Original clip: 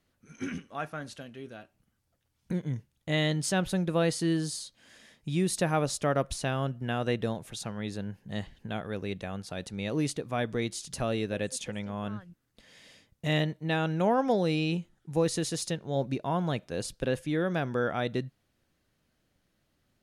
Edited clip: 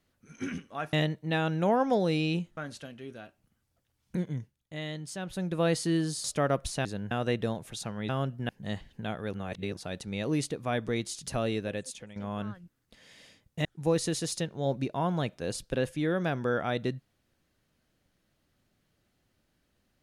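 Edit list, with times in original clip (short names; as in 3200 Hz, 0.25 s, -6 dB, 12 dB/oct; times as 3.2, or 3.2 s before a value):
2.57–4.03 dip -10 dB, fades 0.44 s
4.6–5.9 cut
6.51–6.91 swap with 7.89–8.15
8.99–9.43 reverse
11.19–11.82 fade out, to -14.5 dB
13.31–14.95 move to 0.93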